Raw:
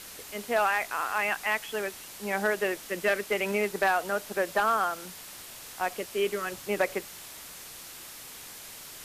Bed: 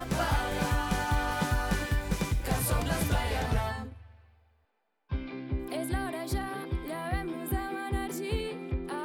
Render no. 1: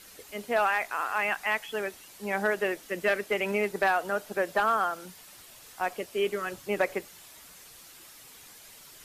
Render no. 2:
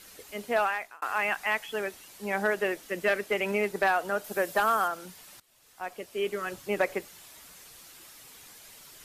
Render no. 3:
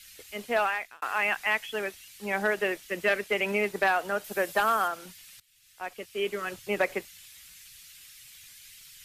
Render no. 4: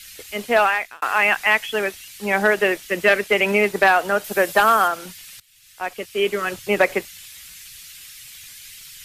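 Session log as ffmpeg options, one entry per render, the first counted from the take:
-af "afftdn=nr=8:nf=-45"
-filter_complex "[0:a]asettb=1/sr,asplit=3[a][b][c];[a]atrim=end=4.244[d];[b]atrim=start=4.24:end=4.88,asetpts=PTS-STARTPTS,afade=t=in:d=0.004:c=qsin,afade=t=out:st=0.636:d=0.004:c=qsin,highshelf=f=7.6k:g=11[e];[c]atrim=start=4.876[f];[d][e]acrossfade=d=0.004:c1=hsin:c2=qsin[g];[g][f]acrossfade=d=0.004:c1=qsin:c2=hsin,asplit=3[h][i][j];[h]atrim=end=1.02,asetpts=PTS-STARTPTS,afade=t=out:st=0.57:d=0.45[k];[i]atrim=start=1.02:end=5.4,asetpts=PTS-STARTPTS,afade=t=in:d=0.004:c=hsin,afade=t=out:st=4.376:d=0.004:c=hsin:silence=0.1[l];[j]atrim=start=5.4,asetpts=PTS-STARTPTS,afade=t=in:d=1.13:silence=0.1[m];[k][l][m]concat=n=3:v=0:a=1"
-filter_complex "[0:a]acrossover=split=150|1800|2800[a][b][c][d];[b]aeval=exprs='sgn(val(0))*max(abs(val(0))-0.00168,0)':c=same[e];[c]crystalizer=i=5:c=0[f];[a][e][f][d]amix=inputs=4:normalize=0"
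-af "volume=9.5dB"

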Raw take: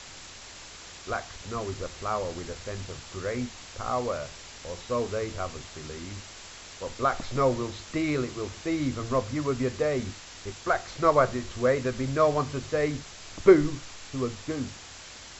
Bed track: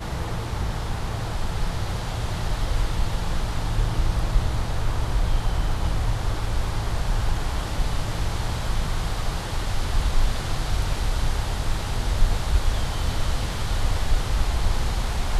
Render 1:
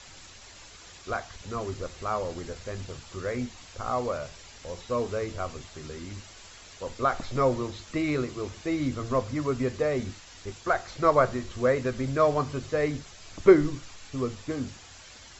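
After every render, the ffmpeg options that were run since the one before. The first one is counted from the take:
-af "afftdn=nr=7:nf=-46"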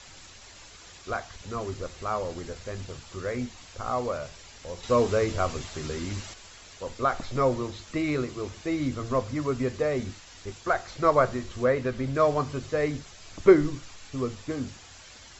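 -filter_complex "[0:a]asettb=1/sr,asplit=3[a][b][c];[a]atrim=end=4.834[d];[b]atrim=start=4.83:end=6.34,asetpts=PTS-STARTPTS,afade=t=in:d=0.004:c=qsin,afade=t=out:st=1.506:d=0.004:c=qsin,acontrast=64[e];[c]atrim=start=6.336[f];[d][e]acrossfade=d=0.004:c1=hsin:c2=qsin[g];[g][f]acrossfade=d=0.004:c1=qsin:c2=hsin,asettb=1/sr,asplit=3[h][i][j];[h]atrim=end=11.644[k];[i]atrim=start=11.64:end=12.15,asetpts=PTS-STARTPTS,afade=t=in:d=0.004:c=qsin,afade=t=out:st=0.506:d=0.004:c=qsin,acrossover=split=4800[l][m];[m]acompressor=threshold=-59dB:ratio=4:attack=1:release=60[n];[l][n]amix=inputs=2:normalize=0[o];[j]atrim=start=12.146[p];[k][o]acrossfade=d=0.004:c1=hsin:c2=qsin[q];[q][p]acrossfade=d=0.004:c1=qsin:c2=hsin"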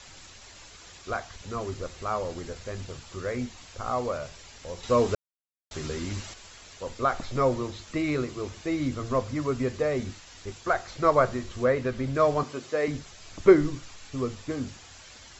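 -filter_complex "[0:a]asettb=1/sr,asplit=3[a][b][c];[a]atrim=end=12.434[d];[b]atrim=start=12.43:end=12.88,asetpts=PTS-STARTPTS,afade=t=in:d=0.004:c=qsin,afade=t=out:st=0.446:d=0.004:c=qsin,highpass=250[e];[c]atrim=start=12.876[f];[d][e]acrossfade=d=0.004:c1=hsin:c2=qsin[g];[g][f]acrossfade=d=0.004:c1=qsin:c2=hsin,asplit=3[h][i][j];[h]atrim=end=5.15,asetpts=PTS-STARTPTS,afade=t=out:st=5.146:d=0.004:c=hsin[k];[i]atrim=start=5.15:end=5.71,asetpts=PTS-STARTPTS,volume=0[l];[j]atrim=start=5.71,asetpts=PTS-STARTPTS,afade=t=in:d=0.004:c=hsin[m];[k][l][m]concat=n=3:v=0:a=1"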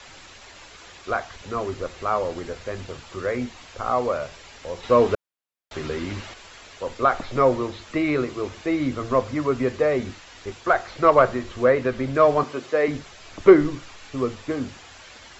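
-filter_complex "[0:a]acrossover=split=250|3700[a][b][c];[b]acontrast=67[d];[c]alimiter=level_in=21.5dB:limit=-24dB:level=0:latency=1,volume=-21.5dB[e];[a][d][e]amix=inputs=3:normalize=0"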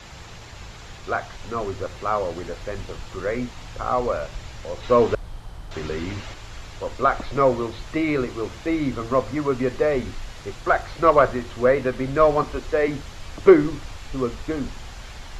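-filter_complex "[1:a]volume=-14.5dB[a];[0:a][a]amix=inputs=2:normalize=0"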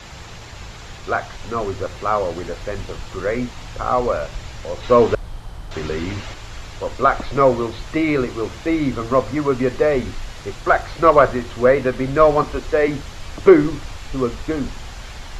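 -af "volume=4dB,alimiter=limit=-1dB:level=0:latency=1"

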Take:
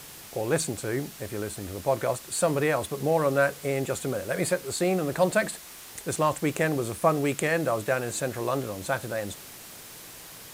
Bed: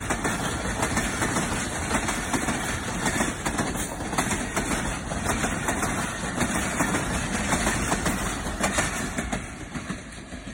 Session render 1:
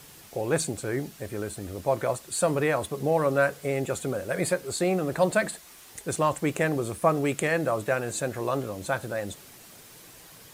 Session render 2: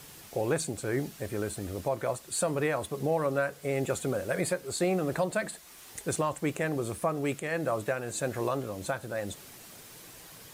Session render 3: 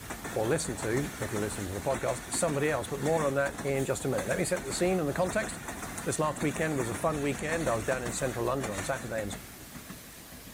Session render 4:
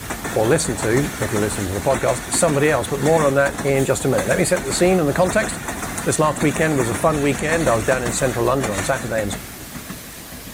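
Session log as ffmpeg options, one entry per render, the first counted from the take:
-af "afftdn=nr=6:nf=-45"
-af "alimiter=limit=-18.5dB:level=0:latency=1:release=493"
-filter_complex "[1:a]volume=-13dB[a];[0:a][a]amix=inputs=2:normalize=0"
-af "volume=12dB"

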